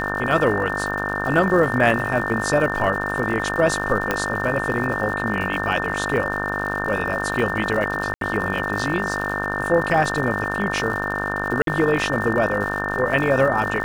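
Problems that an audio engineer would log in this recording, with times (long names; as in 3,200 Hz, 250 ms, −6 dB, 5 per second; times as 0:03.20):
mains buzz 50 Hz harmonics 32 −27 dBFS
surface crackle 160 per second −29 dBFS
whistle 1,800 Hz −26 dBFS
0:04.11: click −6 dBFS
0:08.14–0:08.21: drop-out 72 ms
0:11.62–0:11.67: drop-out 52 ms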